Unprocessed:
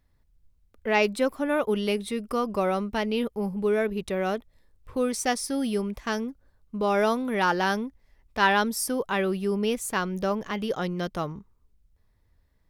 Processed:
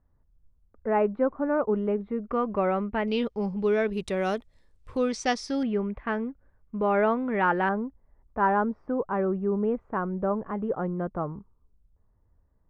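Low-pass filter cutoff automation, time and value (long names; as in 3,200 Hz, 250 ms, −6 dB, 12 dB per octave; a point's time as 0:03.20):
low-pass filter 24 dB per octave
1,400 Hz
from 0:02.27 2,300 Hz
from 0:03.08 5,800 Hz
from 0:03.93 9,500 Hz
from 0:04.97 5,700 Hz
from 0:05.63 2,200 Hz
from 0:07.69 1,300 Hz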